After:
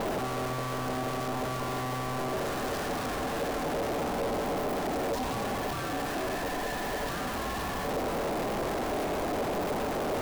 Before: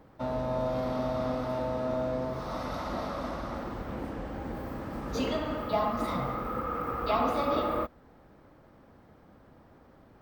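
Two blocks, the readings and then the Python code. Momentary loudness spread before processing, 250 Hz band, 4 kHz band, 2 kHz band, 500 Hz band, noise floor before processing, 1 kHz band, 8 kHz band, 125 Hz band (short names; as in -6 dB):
9 LU, +0.5 dB, +6.0 dB, +7.5 dB, +1.0 dB, -58 dBFS, +1.5 dB, +14.0 dB, +1.0 dB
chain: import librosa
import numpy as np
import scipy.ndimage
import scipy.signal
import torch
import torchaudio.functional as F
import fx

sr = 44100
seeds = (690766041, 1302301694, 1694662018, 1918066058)

y = np.sign(x) * np.sqrt(np.mean(np.square(x)))
y = fx.low_shelf(y, sr, hz=370.0, db=9.0)
y = y * np.sin(2.0 * np.pi * 510.0 * np.arange(len(y)) / sr)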